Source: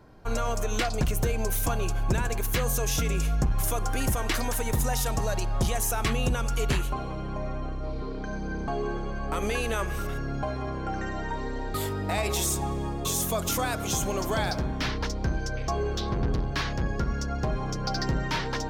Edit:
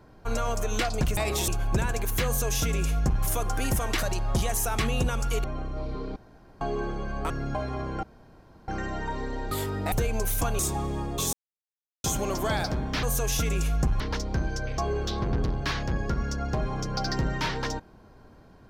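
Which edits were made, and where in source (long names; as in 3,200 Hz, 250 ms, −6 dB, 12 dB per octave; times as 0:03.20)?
0:01.17–0:01.84: swap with 0:12.15–0:12.46
0:02.62–0:03.59: duplicate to 0:14.90
0:04.39–0:05.29: remove
0:06.70–0:07.51: remove
0:08.23–0:08.68: fill with room tone
0:09.37–0:10.18: remove
0:10.91: splice in room tone 0.65 s
0:13.20–0:13.91: silence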